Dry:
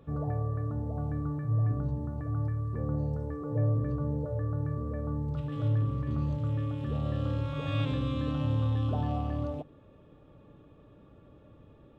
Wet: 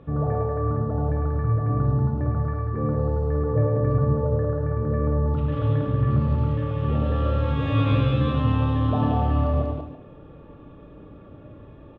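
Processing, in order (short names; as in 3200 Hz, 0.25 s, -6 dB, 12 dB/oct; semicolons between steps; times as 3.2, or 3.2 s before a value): LPF 3000 Hz 12 dB/oct; tapped delay 0.104/0.188/0.336 s -5/-3.5/-11 dB; reverb RT60 0.45 s, pre-delay 23 ms, DRR 7 dB; gain +7.5 dB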